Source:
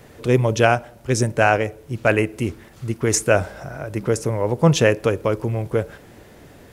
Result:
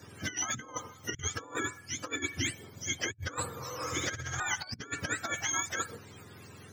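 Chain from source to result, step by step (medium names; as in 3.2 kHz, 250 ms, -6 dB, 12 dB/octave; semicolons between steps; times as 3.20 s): spectrum inverted on a logarithmic axis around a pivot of 860 Hz; 3.76–4.40 s: flutter echo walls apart 12 m, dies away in 1.4 s; compressor with a negative ratio -26 dBFS, ratio -0.5; trim -9 dB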